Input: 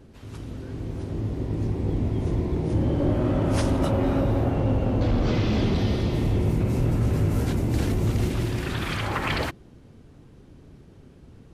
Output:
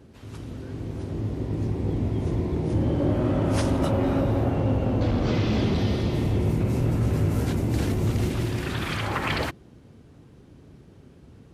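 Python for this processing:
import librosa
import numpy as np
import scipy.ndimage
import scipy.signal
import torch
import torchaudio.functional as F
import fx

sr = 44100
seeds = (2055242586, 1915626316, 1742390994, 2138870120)

y = scipy.signal.sosfilt(scipy.signal.butter(2, 56.0, 'highpass', fs=sr, output='sos'), x)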